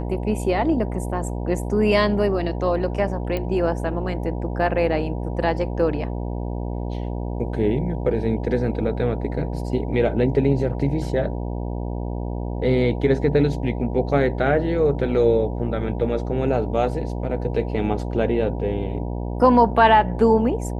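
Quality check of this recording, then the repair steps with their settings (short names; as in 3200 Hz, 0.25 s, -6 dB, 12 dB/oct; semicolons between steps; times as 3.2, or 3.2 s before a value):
buzz 60 Hz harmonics 16 -27 dBFS
3.37 pop -14 dBFS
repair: de-click; de-hum 60 Hz, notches 16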